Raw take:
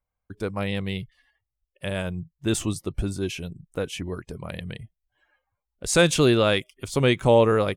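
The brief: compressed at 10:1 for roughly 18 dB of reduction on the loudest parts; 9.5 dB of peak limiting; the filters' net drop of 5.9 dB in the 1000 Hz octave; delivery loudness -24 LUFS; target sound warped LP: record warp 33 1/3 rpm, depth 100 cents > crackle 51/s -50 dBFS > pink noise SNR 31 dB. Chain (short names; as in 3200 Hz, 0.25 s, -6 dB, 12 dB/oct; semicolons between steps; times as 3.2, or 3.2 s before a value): bell 1000 Hz -8 dB; compressor 10:1, threshold -33 dBFS; limiter -29 dBFS; record warp 33 1/3 rpm, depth 100 cents; crackle 51/s -50 dBFS; pink noise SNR 31 dB; gain +17 dB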